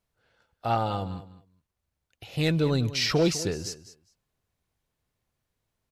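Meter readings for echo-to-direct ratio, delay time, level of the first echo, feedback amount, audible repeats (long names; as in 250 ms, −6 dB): −15.0 dB, 204 ms, −15.0 dB, 16%, 2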